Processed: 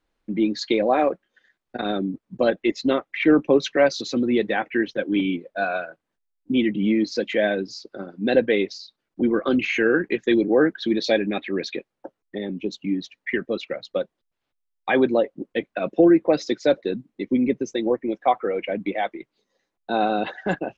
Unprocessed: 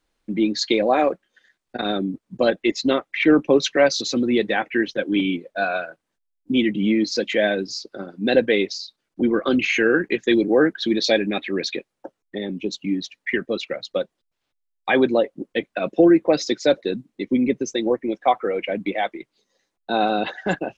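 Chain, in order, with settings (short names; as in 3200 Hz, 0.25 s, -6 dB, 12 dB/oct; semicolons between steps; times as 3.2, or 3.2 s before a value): high shelf 4300 Hz -10.5 dB; gain -1 dB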